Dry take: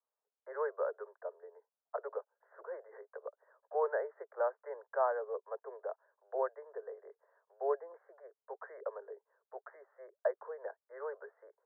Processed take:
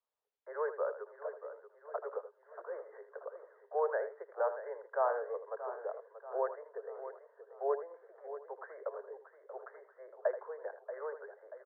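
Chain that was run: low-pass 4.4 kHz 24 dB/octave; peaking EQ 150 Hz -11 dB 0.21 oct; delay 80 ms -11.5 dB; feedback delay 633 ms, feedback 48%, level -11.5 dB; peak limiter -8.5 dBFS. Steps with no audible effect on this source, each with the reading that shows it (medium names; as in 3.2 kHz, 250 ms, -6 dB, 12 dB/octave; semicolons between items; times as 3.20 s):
low-pass 4.4 kHz: input has nothing above 1.8 kHz; peaking EQ 150 Hz: input has nothing below 340 Hz; peak limiter -8.5 dBFS: peak at its input -20.0 dBFS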